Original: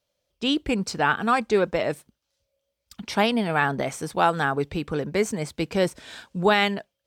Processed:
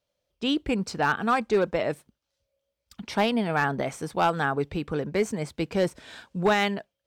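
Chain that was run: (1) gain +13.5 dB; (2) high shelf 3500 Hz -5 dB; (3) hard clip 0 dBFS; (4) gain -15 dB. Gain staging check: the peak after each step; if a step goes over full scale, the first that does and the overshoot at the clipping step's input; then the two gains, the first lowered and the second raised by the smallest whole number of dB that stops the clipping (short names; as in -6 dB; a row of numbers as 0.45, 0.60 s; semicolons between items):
+6.0, +5.5, 0.0, -15.0 dBFS; step 1, 5.5 dB; step 1 +7.5 dB, step 4 -9 dB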